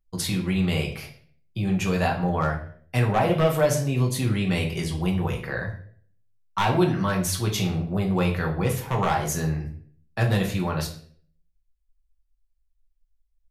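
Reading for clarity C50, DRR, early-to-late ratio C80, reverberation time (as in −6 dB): 9.0 dB, 0.0 dB, 12.5 dB, 0.55 s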